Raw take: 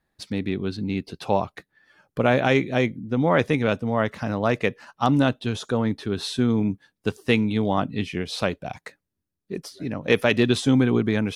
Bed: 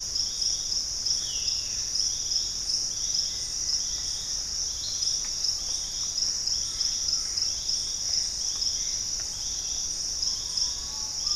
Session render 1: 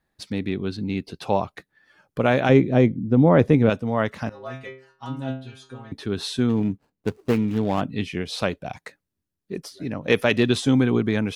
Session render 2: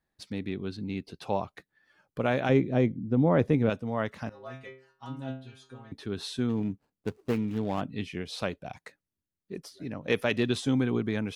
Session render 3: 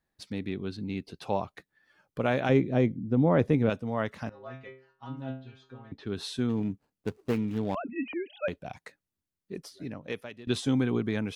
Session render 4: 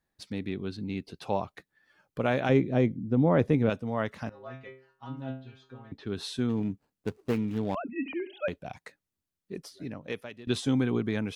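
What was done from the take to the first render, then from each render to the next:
0:02.49–0:03.70: tilt shelving filter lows +7.5 dB, about 910 Hz; 0:04.29–0:05.92: stiff-string resonator 130 Hz, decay 0.48 s, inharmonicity 0.002; 0:06.49–0:07.81: running median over 25 samples
level −7.5 dB
0:04.30–0:06.07: high-frequency loss of the air 170 metres; 0:07.75–0:08.48: three sine waves on the formant tracks; 0:09.84–0:10.47: fade out quadratic, to −21 dB
0:07.99–0:08.44: flutter between parallel walls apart 12 metres, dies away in 0.32 s

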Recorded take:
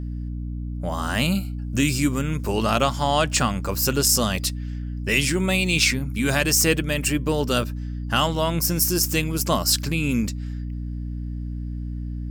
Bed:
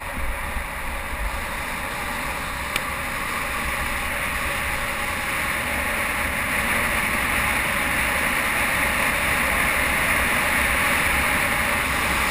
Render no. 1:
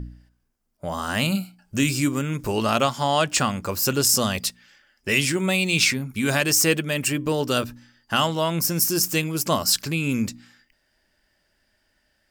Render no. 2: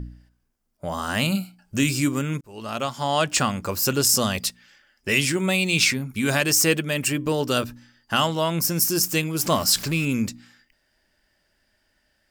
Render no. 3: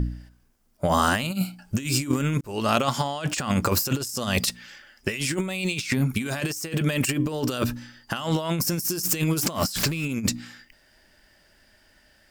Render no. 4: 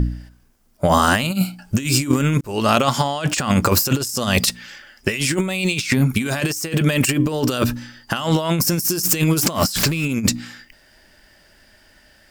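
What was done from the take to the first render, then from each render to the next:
hum removal 60 Hz, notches 5
0:02.41–0:03.27: fade in; 0:09.39–0:10.05: converter with a step at zero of −32 dBFS
in parallel at −3 dB: brickwall limiter −19 dBFS, peak gain reduction 11.5 dB; on the sum: compressor whose output falls as the input rises −24 dBFS, ratio −0.5
level +6.5 dB; brickwall limiter −3 dBFS, peak gain reduction 2 dB

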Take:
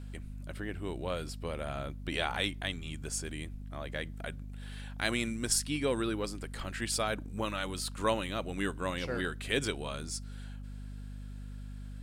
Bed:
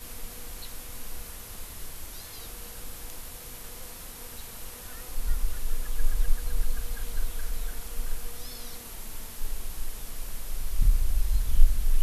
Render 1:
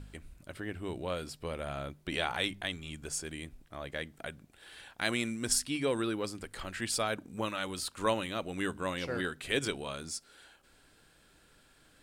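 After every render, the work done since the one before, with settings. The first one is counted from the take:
hum removal 50 Hz, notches 5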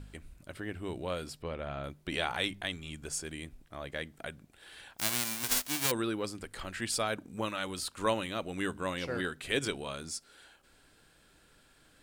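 0:01.42–0:01.84: high-frequency loss of the air 140 metres
0:04.97–0:05.90: spectral envelope flattened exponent 0.1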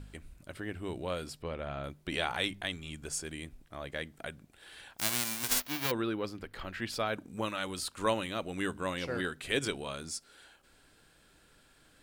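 0:05.60–0:07.14: parametric band 8,500 Hz −15 dB 0.95 octaves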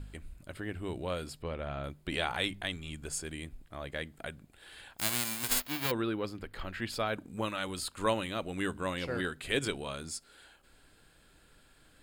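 low-shelf EQ 77 Hz +6 dB
notch filter 5,800 Hz, Q 6.7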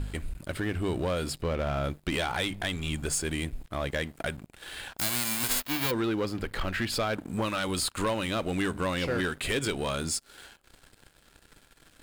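downward compressor 3 to 1, threshold −36 dBFS, peak gain reduction 9.5 dB
leveller curve on the samples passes 3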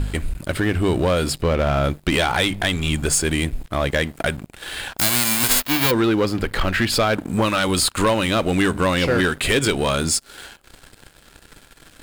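level +10.5 dB

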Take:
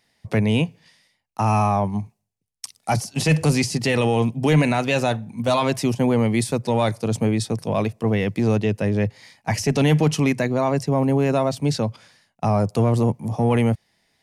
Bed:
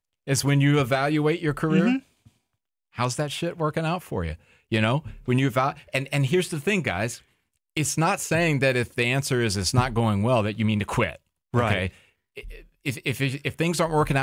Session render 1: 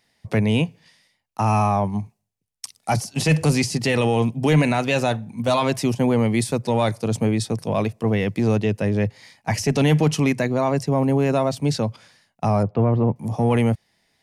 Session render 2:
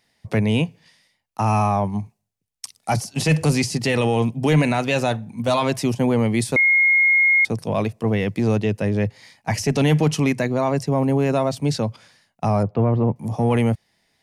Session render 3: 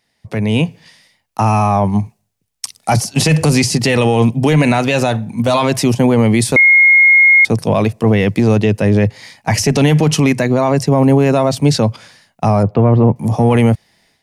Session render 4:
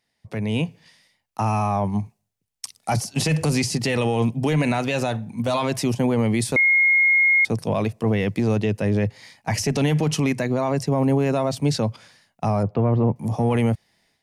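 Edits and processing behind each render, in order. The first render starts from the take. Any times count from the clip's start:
0:12.63–0:13.16: Bessel low-pass filter 1,800 Hz, order 4
0:06.56–0:07.45: beep over 2,150 Hz −12.5 dBFS
brickwall limiter −15 dBFS, peak gain reduction 6.5 dB; automatic gain control gain up to 11 dB
level −9 dB

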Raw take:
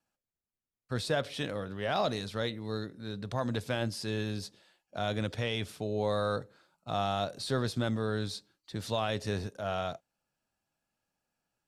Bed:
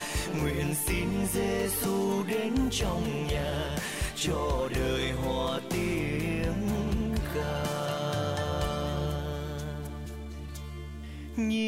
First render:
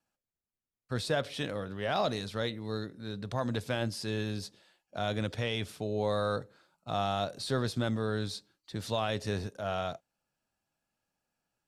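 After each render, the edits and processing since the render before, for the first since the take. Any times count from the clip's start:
no processing that can be heard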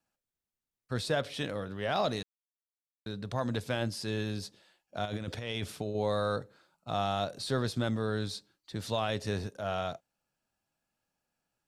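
0:02.23–0:03.06: silence
0:05.05–0:05.95: compressor whose output falls as the input rises −35 dBFS, ratio −0.5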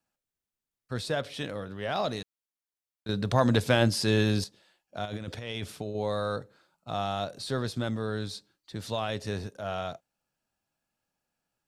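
0:03.09–0:04.44: clip gain +9.5 dB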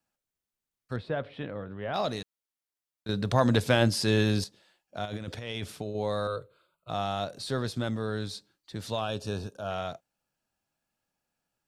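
0:00.96–0:01.94: high-frequency loss of the air 460 metres
0:06.27–0:06.90: phaser with its sweep stopped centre 1,200 Hz, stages 8
0:09.01–0:09.71: Butterworth band-reject 2,000 Hz, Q 2.7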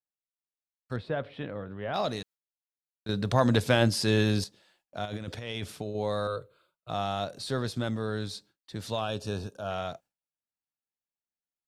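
noise gate with hold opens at −58 dBFS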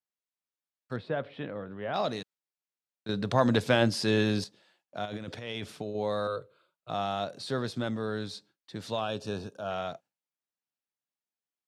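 high-pass filter 130 Hz 12 dB per octave
high-shelf EQ 9,200 Hz −12 dB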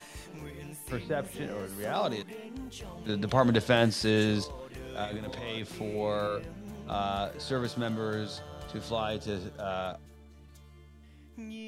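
mix in bed −14 dB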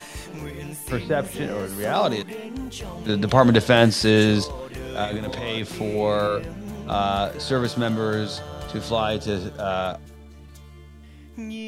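level +9 dB
brickwall limiter −1 dBFS, peak gain reduction 1.5 dB

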